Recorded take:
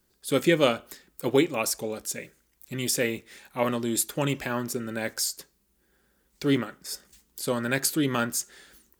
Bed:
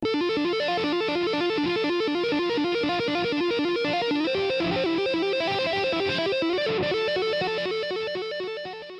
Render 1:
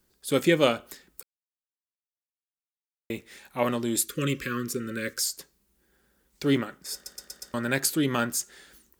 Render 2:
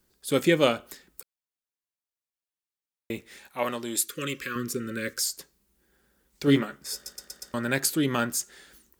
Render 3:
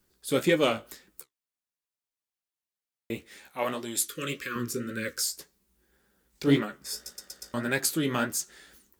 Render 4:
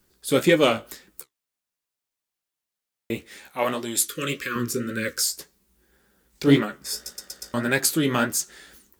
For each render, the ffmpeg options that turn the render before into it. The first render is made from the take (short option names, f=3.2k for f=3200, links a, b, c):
-filter_complex "[0:a]asettb=1/sr,asplit=3[a][b][c];[a]atrim=end=3.984[d];[b]atrim=start=3.98:end=5.24,asetpts=PTS-STARTPTS,afade=t=in:d=0.004:c=qsin,afade=t=out:st=1.256:d=0.004:c=qsin,asuperstop=centerf=770:order=20:qfactor=1.5[e];[c]atrim=start=5.236[f];[d][e]acrossfade=d=0.004:c1=hsin:c2=qsin[g];[g][f]acrossfade=d=0.004:c1=qsin:c2=hsin,asplit=8[h][i][j][k][l][m][n][o];[h]atrim=end=1.23,asetpts=PTS-STARTPTS,afade=t=out:st=1.226:d=0.004:c=hsin[p];[i]atrim=start=1.23:end=3.1,asetpts=PTS-STARTPTS,volume=0[q];[j]atrim=start=3.1:end=7.062,asetpts=PTS-STARTPTS,afade=t=in:d=0.004:c=hsin[r];[k]atrim=start=6.938:end=7.062[s];[l]atrim=start=6.938:end=7.062[t];[m]atrim=start=6.938:end=7.062[u];[n]atrim=start=6.938:end=7.062[v];[o]atrim=start=7.538[w];[p][q][r]concat=n=3:v=0:a=1[x];[x][s]acrossfade=d=0.004:c1=hsin:c2=hsin[y];[y][t]acrossfade=d=0.004:c1=hsin:c2=hsin[z];[z][u]acrossfade=d=0.004:c1=hsin:c2=hsin[aa];[aa][v]acrossfade=d=0.004:c1=hsin:c2=hsin[ab];[ab][w]acrossfade=d=0.004:c1=hsin:c2=hsin"
-filter_complex "[0:a]asettb=1/sr,asplit=3[a][b][c];[a]atrim=end=3.484[d];[b]atrim=start=3.48:end=4.56,asetpts=PTS-STARTPTS,afade=t=in:d=0.004:c=qsin,afade=t=out:st=1.076:d=0.004:c=qsin,lowshelf=f=310:g=-11.5[e];[c]atrim=start=4.556[f];[d][e]acrossfade=d=0.004:c1=hsin:c2=qsin[g];[g][f]acrossfade=d=0.004:c1=qsin:c2=hsin,asettb=1/sr,asplit=3[h][i][j];[h]atrim=end=6.464[k];[i]atrim=start=6.46:end=7.12,asetpts=PTS-STARTPTS,afade=t=in:d=0.004:c=qsin,afade=t=out:st=0.656:d=0.004:c=qsin,asplit=2[l][m];[m]adelay=14,volume=-4.5dB[n];[l][n]amix=inputs=2:normalize=0,atrim=end_sample=29106[o];[j]atrim=start=7.116[p];[k][o]acrossfade=d=0.004:c1=hsin:c2=qsin[q];[q][p]acrossfade=d=0.004:c1=qsin:c2=hsin"
-filter_complex "[0:a]flanger=delay=9.5:depth=9.5:regen=41:speed=1.8:shape=sinusoidal,asplit=2[a][b];[b]asoftclip=type=hard:threshold=-20.5dB,volume=-9dB[c];[a][c]amix=inputs=2:normalize=0"
-af "volume=5.5dB"